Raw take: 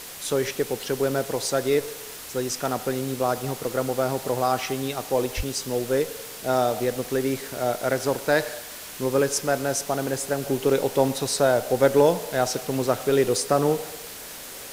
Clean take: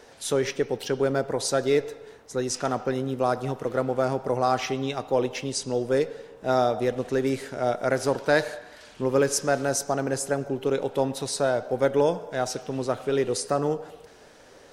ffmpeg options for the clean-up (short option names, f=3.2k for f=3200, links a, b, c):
-filter_complex "[0:a]asplit=3[a][b][c];[a]afade=t=out:st=5.36:d=0.02[d];[b]highpass=f=140:w=0.5412,highpass=f=140:w=1.3066,afade=t=in:st=5.36:d=0.02,afade=t=out:st=5.48:d=0.02[e];[c]afade=t=in:st=5.48:d=0.02[f];[d][e][f]amix=inputs=3:normalize=0,afwtdn=0.013,asetnsamples=n=441:p=0,asendcmd='10.43 volume volume -4dB',volume=0dB"